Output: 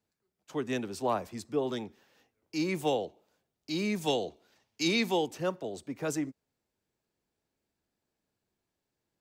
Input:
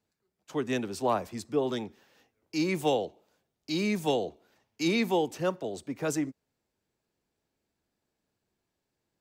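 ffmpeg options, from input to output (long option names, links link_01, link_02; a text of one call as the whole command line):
ffmpeg -i in.wav -filter_complex "[0:a]asettb=1/sr,asplit=3[link_01][link_02][link_03];[link_01]atrim=end=4.014[link_04];[link_02]atrim=start=4.01:end=5.27,asetpts=PTS-STARTPTS,afade=type=in:duration=0.004:curve=qsin,afade=type=out:start_time=1.256:duration=0.004:curve=qsin,equalizer=frequency=4800:width=0.57:gain=6.5[link_05];[link_03]atrim=start=5.266[link_06];[link_04][link_05]acrossfade=duration=0.004:curve1=hsin:curve2=qsin[link_07];[link_07][link_06]acrossfade=duration=0.004:curve1=qsin:curve2=hsin,volume=-2.5dB" out.wav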